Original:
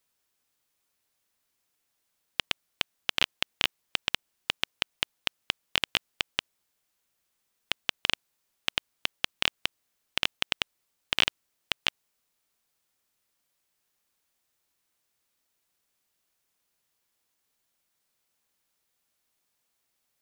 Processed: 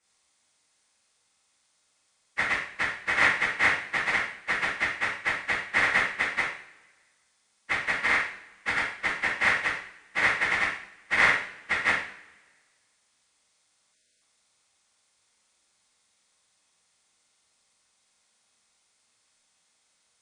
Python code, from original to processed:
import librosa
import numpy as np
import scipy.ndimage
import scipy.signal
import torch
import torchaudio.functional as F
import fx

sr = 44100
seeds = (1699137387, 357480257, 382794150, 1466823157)

y = fx.partial_stretch(x, sr, pct=82)
y = fx.rev_double_slope(y, sr, seeds[0], early_s=0.54, late_s=1.6, knee_db=-21, drr_db=-8.0)
y = fx.spec_erase(y, sr, start_s=13.94, length_s=0.28, low_hz=670.0, high_hz=1400.0)